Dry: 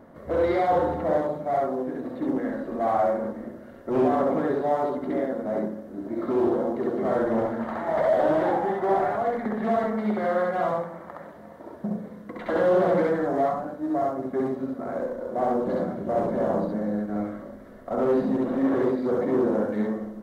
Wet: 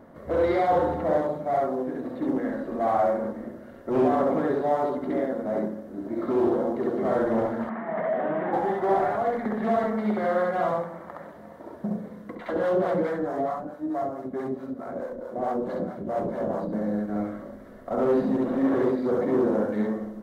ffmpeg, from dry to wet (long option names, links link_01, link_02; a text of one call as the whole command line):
ffmpeg -i in.wav -filter_complex "[0:a]asplit=3[link_01][link_02][link_03];[link_01]afade=type=out:start_time=7.68:duration=0.02[link_04];[link_02]highpass=frequency=170:width=0.5412,highpass=frequency=170:width=1.3066,equalizer=frequency=200:width_type=q:width=4:gain=7,equalizer=frequency=320:width_type=q:width=4:gain=-7,equalizer=frequency=550:width_type=q:width=4:gain=-9,equalizer=frequency=870:width_type=q:width=4:gain=-7,equalizer=frequency=1400:width_type=q:width=4:gain=-4,lowpass=frequency=2400:width=0.5412,lowpass=frequency=2400:width=1.3066,afade=type=in:start_time=7.68:duration=0.02,afade=type=out:start_time=8.52:duration=0.02[link_05];[link_03]afade=type=in:start_time=8.52:duration=0.02[link_06];[link_04][link_05][link_06]amix=inputs=3:normalize=0,asettb=1/sr,asplit=3[link_07][link_08][link_09];[link_07]atrim=end=12.354[link_10];[link_08]atrim=start=12.35:end=16.73,asetpts=PTS-STARTPTS,afade=type=in:duration=0.004:curve=qsin,afade=type=out:start_time=4.376:duration=0.004:curve=qsin,acrossover=split=570[link_11][link_12];[link_11]aeval=exprs='val(0)*(1-0.7/2+0.7/2*cos(2*PI*4.6*n/s))':channel_layout=same[link_13];[link_12]aeval=exprs='val(0)*(1-0.7/2-0.7/2*cos(2*PI*4.6*n/s))':channel_layout=same[link_14];[link_13][link_14]amix=inputs=2:normalize=0[link_15];[link_09]atrim=start=16.726[link_16];[link_10][link_15]acrossfade=duration=0.004:curve1=hsin:curve2=qsin[link_17];[link_17][link_16]acrossfade=duration=0.004:curve1=qsin:curve2=hsin" out.wav